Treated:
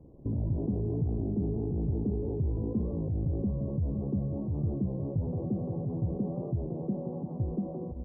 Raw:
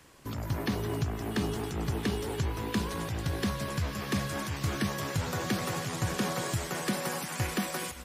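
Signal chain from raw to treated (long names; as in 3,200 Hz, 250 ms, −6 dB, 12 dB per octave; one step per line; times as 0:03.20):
in parallel at +1 dB: compressor whose output falls as the input rises −38 dBFS, ratio −1
on the sum: Gaussian smoothing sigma 17 samples
wow of a warped record 33 1/3 rpm, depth 100 cents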